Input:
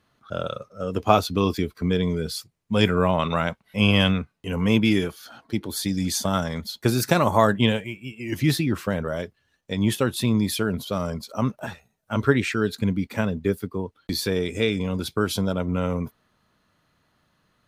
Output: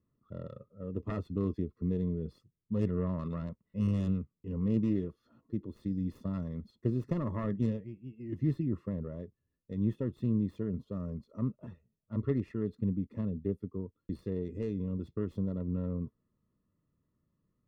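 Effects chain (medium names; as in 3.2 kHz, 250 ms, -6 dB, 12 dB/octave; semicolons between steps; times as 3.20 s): self-modulated delay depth 0.4 ms; boxcar filter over 57 samples; trim -7 dB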